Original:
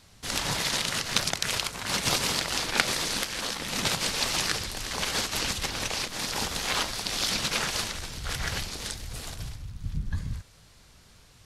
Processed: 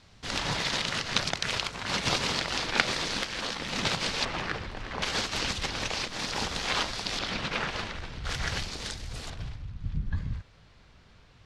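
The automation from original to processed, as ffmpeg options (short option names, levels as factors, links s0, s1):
-af "asetnsamples=n=441:p=0,asendcmd='4.25 lowpass f 2100;5.02 lowpass f 5400;7.19 lowpass f 2800;8.25 lowpass f 6200;9.3 lowpass f 3300',lowpass=4900"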